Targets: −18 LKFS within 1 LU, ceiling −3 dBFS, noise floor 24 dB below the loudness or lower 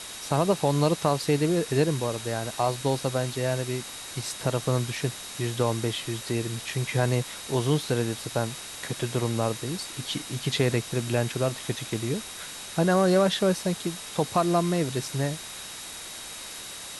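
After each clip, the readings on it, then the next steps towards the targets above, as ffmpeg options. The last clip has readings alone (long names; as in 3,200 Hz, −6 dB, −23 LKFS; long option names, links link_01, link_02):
interfering tone 3,800 Hz; level of the tone −45 dBFS; background noise floor −40 dBFS; target noise floor −52 dBFS; integrated loudness −27.5 LKFS; sample peak −9.0 dBFS; target loudness −18.0 LKFS
→ -af "bandreject=frequency=3800:width=30"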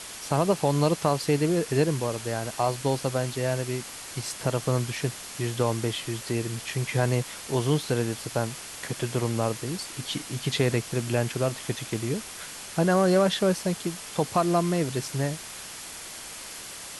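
interfering tone none found; background noise floor −40 dBFS; target noise floor −52 dBFS
→ -af "afftdn=noise_reduction=12:noise_floor=-40"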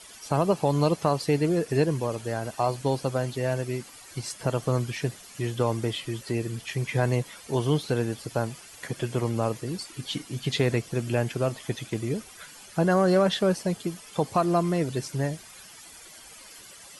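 background noise floor −48 dBFS; target noise floor −52 dBFS
→ -af "afftdn=noise_reduction=6:noise_floor=-48"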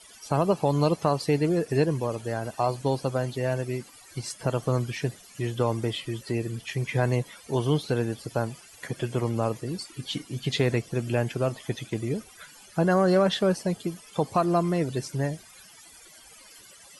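background noise floor −51 dBFS; target noise floor −52 dBFS
→ -af "afftdn=noise_reduction=6:noise_floor=-51"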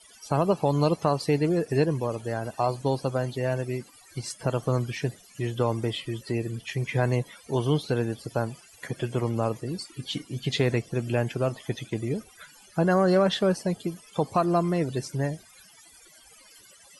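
background noise floor −54 dBFS; integrated loudness −27.5 LKFS; sample peak −9.5 dBFS; target loudness −18.0 LKFS
→ -af "volume=9.5dB,alimiter=limit=-3dB:level=0:latency=1"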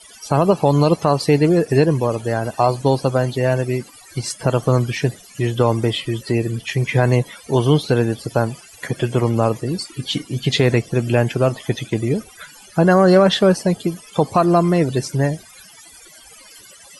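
integrated loudness −18.5 LKFS; sample peak −3.0 dBFS; background noise floor −44 dBFS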